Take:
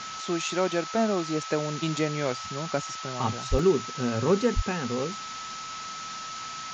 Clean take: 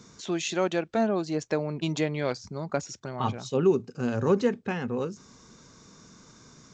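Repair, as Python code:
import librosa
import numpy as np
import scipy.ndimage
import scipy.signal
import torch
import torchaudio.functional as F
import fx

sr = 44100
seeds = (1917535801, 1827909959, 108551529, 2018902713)

y = fx.notch(x, sr, hz=1300.0, q=30.0)
y = fx.fix_deplosive(y, sr, at_s=(3.5, 4.55))
y = fx.fix_interpolate(y, sr, at_s=(3.59,), length_ms=1.9)
y = fx.noise_reduce(y, sr, print_start_s=5.19, print_end_s=5.69, reduce_db=16.0)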